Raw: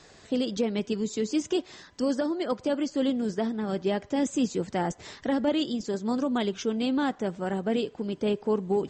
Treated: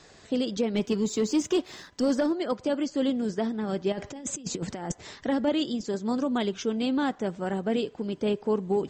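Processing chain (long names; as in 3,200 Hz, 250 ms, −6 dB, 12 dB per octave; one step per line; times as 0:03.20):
0:00.74–0:02.33: leveller curve on the samples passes 1
0:03.92–0:04.92: compressor whose output falls as the input rises −32 dBFS, ratio −0.5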